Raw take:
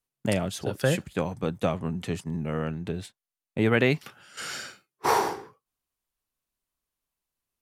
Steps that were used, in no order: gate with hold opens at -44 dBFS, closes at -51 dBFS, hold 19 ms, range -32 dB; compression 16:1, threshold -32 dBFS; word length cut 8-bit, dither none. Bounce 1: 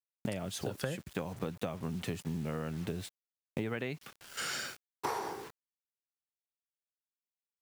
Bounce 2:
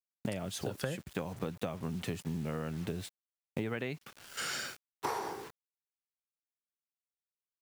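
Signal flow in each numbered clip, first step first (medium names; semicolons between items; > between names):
gate with hold > word length cut > compression; word length cut > compression > gate with hold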